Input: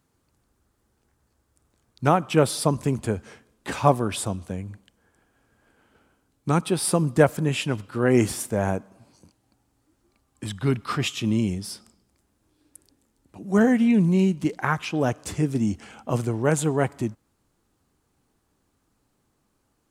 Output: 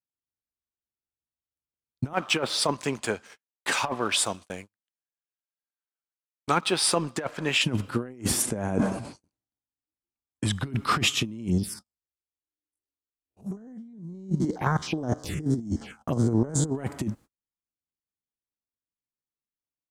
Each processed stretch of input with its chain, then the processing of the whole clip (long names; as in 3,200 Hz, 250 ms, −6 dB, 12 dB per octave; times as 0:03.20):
0:02.13–0:07.64: treble cut that deepens with the level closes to 2,700 Hz, closed at −15.5 dBFS + high-pass filter 1,500 Hz 6 dB per octave + leveller curve on the samples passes 1
0:08.42–0:10.52: Butterworth low-pass 11,000 Hz 48 dB per octave + level that may fall only so fast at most 63 dB per second
0:11.48–0:16.75: spectrum averaged block by block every 50 ms + phaser swept by the level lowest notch 170 Hz, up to 2,600 Hz, full sweep at −25 dBFS
whole clip: noise gate −46 dBFS, range −41 dB; dynamic equaliser 250 Hz, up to +5 dB, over −32 dBFS, Q 1.3; compressor whose output falls as the input rises −26 dBFS, ratio −0.5